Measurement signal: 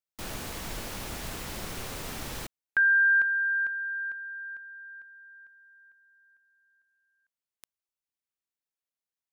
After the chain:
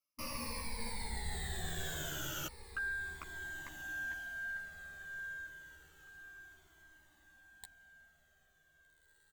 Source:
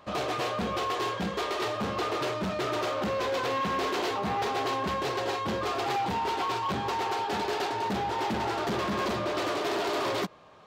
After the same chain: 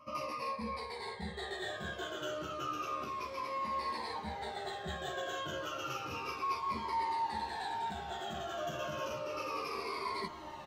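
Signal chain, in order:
rippled gain that drifts along the octave scale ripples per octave 0.91, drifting −0.32 Hz, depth 21 dB
reversed playback
downward compressor 5 to 1, threshold −37 dBFS
reversed playback
double-tracking delay 13 ms −4 dB
on a send: feedback delay with all-pass diffusion 1,643 ms, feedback 41%, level −12.5 dB
on the sum: flanger whose copies keep moving one way falling 0.29 Hz
level +1.5 dB

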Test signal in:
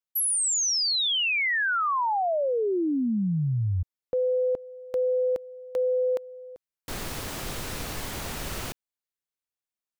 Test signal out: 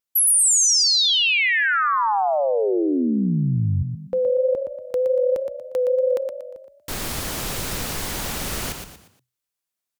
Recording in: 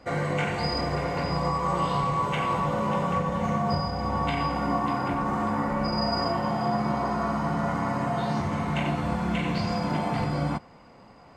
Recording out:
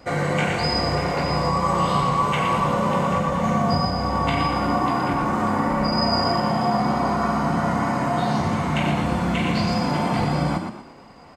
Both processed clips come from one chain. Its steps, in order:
pitch vibrato 3.2 Hz 25 cents
high-shelf EQ 4,200 Hz +4.5 dB
echo with shifted repeats 118 ms, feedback 36%, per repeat +31 Hz, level −6.5 dB
level +4 dB

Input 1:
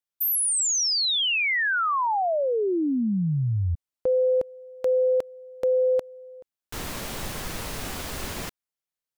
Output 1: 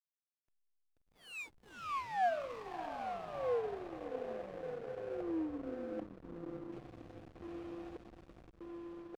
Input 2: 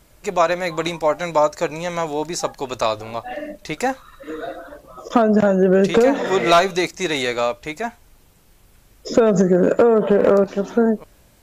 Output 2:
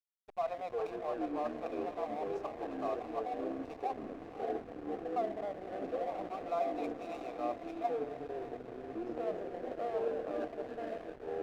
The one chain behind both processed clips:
running median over 3 samples
hum removal 52.09 Hz, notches 13
dynamic equaliser 790 Hz, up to +7 dB, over −29 dBFS, Q 0.88
reversed playback
downward compressor 6 to 1, threshold −20 dBFS
reversed playback
formant filter a
delay with pitch and tempo change per echo 164 ms, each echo −7 semitones, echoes 2
on a send: feedback delay with all-pass diffusion 587 ms, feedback 69%, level −9.5 dB
on the sum: slack as between gear wheels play −33.5 dBFS
level −7 dB

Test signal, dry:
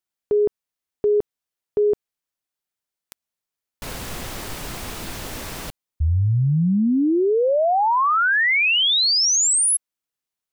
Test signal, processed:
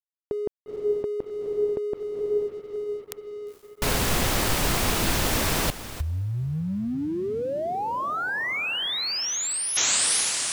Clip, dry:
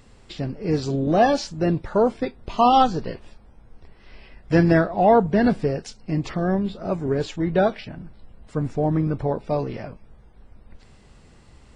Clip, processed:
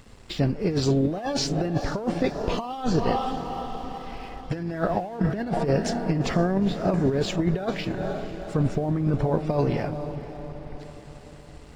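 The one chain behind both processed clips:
in parallel at −0.5 dB: brickwall limiter −14.5 dBFS
on the sum: feedback delay with all-pass diffusion 474 ms, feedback 56%, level −14 dB
compressor whose output falls as the input rises −18 dBFS, ratio −0.5
dead-zone distortion −47.5 dBFS
level −4 dB

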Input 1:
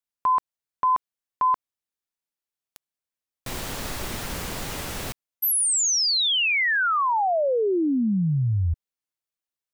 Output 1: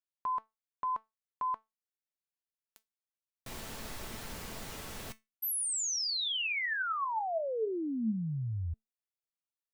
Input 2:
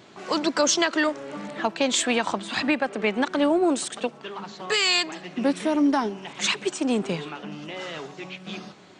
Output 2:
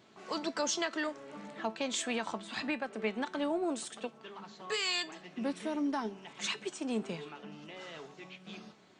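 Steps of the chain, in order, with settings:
tuned comb filter 220 Hz, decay 0.2 s, harmonics all, mix 60%
level −5.5 dB

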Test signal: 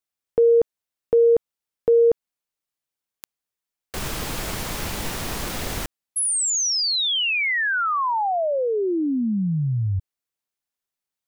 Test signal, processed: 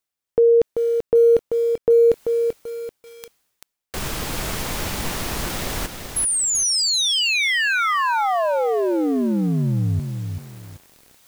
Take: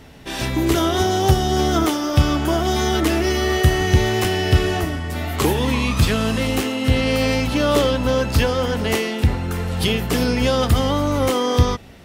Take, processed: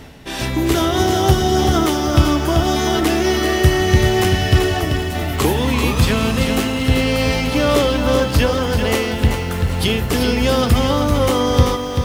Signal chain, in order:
reversed playback
upward compression, threshold −31 dBFS
reversed playback
feedback echo at a low word length 387 ms, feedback 35%, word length 7 bits, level −6 dB
level +1.5 dB

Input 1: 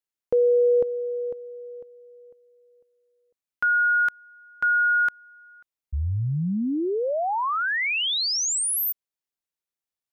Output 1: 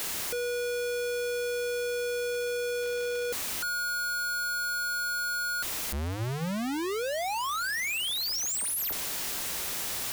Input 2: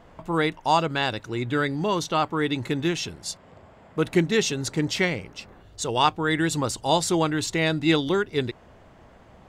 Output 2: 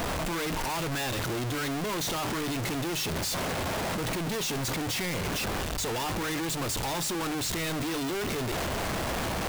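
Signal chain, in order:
sign of each sample alone
mains hum 60 Hz, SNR 29 dB
mains-hum notches 50/100/150 Hz
level −5 dB

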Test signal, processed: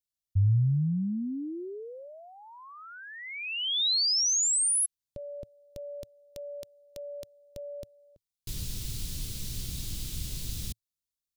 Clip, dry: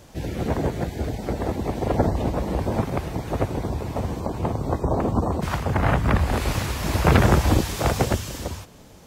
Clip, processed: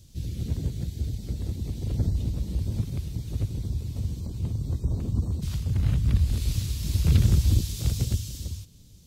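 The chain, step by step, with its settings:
drawn EQ curve 110 Hz 0 dB, 430 Hz −18 dB, 760 Hz −29 dB, 1,800 Hz −22 dB, 3,800 Hz −4 dB

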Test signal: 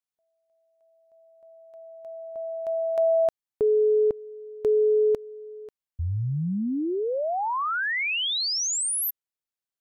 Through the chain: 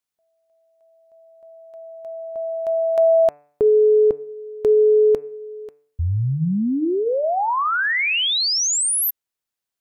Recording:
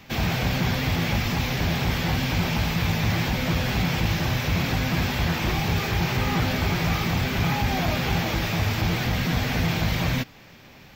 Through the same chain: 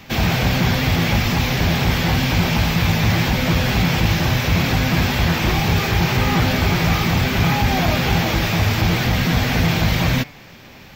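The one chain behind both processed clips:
hum removal 146.1 Hz, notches 18
level +6.5 dB

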